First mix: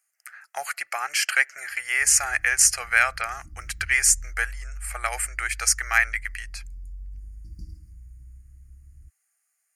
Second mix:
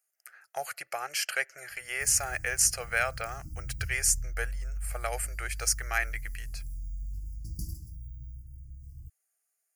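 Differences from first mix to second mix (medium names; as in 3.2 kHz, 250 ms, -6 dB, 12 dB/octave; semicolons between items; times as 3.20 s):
background: remove distance through air 350 m; master: add graphic EQ 125/500/1000/2000/4000/8000 Hz +10/+6/-8/-9/-3/-7 dB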